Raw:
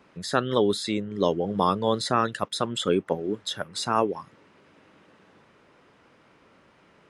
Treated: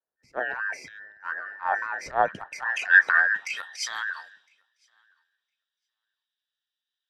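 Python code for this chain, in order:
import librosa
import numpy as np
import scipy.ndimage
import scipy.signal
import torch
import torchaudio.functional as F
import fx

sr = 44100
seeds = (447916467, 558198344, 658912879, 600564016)

p1 = fx.band_invert(x, sr, width_hz=2000)
p2 = fx.filter_sweep_bandpass(p1, sr, from_hz=510.0, to_hz=3700.0, start_s=2.1, end_s=3.83, q=1.4)
p3 = fx.spec_box(p2, sr, start_s=2.22, length_s=0.2, low_hz=210.0, high_hz=2300.0, gain_db=-11)
p4 = fx.transient(p3, sr, attack_db=-11, sustain_db=8)
p5 = p4 + fx.echo_feedback(p4, sr, ms=1010, feedback_pct=27, wet_db=-17.5, dry=0)
p6 = fx.band_widen(p5, sr, depth_pct=100)
y = F.gain(torch.from_numpy(p6), 3.5).numpy()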